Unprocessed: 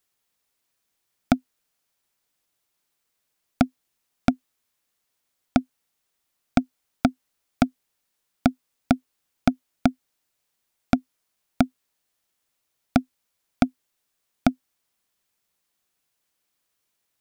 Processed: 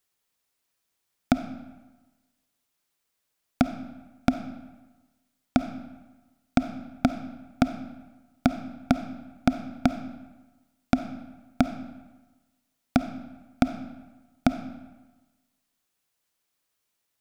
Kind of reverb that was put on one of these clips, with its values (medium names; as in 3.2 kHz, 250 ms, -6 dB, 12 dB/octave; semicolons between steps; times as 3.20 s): algorithmic reverb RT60 1.2 s, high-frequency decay 0.75×, pre-delay 10 ms, DRR 9.5 dB; trim -2 dB